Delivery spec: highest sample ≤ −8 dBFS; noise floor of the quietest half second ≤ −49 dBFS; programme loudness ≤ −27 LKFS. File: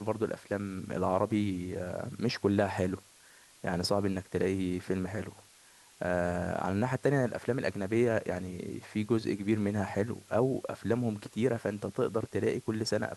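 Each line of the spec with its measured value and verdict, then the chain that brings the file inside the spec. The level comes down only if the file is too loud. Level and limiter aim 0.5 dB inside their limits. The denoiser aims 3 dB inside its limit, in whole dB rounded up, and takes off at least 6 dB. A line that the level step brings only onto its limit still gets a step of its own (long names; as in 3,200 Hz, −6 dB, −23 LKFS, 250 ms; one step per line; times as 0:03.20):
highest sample −13.0 dBFS: in spec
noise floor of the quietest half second −59 dBFS: in spec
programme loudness −32.0 LKFS: in spec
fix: no processing needed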